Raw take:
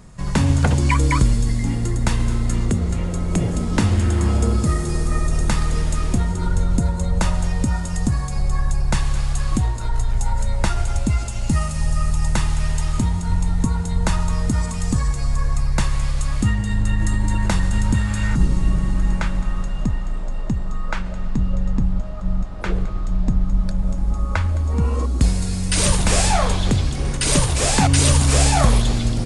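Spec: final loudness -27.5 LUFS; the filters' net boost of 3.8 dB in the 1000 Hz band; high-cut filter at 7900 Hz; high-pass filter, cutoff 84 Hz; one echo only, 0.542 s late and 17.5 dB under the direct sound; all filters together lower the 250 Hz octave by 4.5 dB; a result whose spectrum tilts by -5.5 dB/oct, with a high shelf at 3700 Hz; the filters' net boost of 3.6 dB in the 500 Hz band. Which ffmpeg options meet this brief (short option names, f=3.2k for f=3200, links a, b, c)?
-af "highpass=84,lowpass=7.9k,equalizer=f=250:t=o:g=-8,equalizer=f=500:t=o:g=5.5,equalizer=f=1k:t=o:g=4,highshelf=f=3.7k:g=-7,aecho=1:1:542:0.133,volume=-3dB"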